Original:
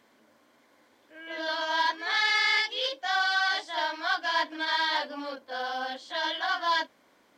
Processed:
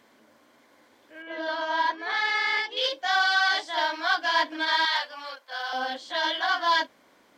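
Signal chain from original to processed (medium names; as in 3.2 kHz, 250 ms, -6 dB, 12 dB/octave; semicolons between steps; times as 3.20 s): 1.22–2.77 s: treble shelf 2.6 kHz -12 dB; 4.85–5.73 s: high-pass 960 Hz 12 dB/octave; trim +3.5 dB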